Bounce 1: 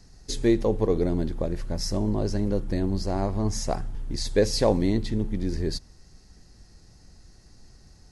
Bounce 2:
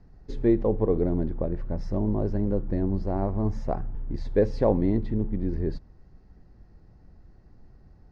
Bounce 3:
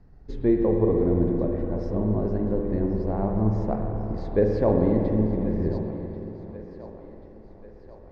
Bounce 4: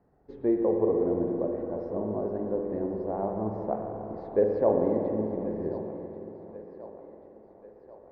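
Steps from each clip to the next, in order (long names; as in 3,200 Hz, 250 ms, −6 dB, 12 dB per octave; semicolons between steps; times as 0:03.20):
Bessel low-pass filter 1,100 Hz, order 2
high-shelf EQ 4,600 Hz −7 dB; feedback echo with a high-pass in the loop 1,087 ms, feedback 59%, high-pass 310 Hz, level −14.5 dB; spring reverb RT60 3.4 s, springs 46/56 ms, chirp 75 ms, DRR 1.5 dB
resonant band-pass 640 Hz, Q 0.95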